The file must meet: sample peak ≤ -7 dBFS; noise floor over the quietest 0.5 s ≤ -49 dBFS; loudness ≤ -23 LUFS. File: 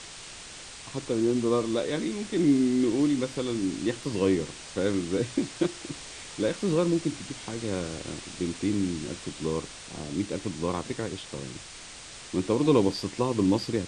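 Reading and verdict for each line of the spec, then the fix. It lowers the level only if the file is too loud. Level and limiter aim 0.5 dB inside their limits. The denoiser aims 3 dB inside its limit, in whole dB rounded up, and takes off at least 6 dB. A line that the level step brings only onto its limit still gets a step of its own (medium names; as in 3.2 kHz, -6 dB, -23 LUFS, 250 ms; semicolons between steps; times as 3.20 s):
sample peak -9.5 dBFS: pass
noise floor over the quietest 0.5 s -44 dBFS: fail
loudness -28.5 LUFS: pass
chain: noise reduction 8 dB, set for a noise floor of -44 dBFS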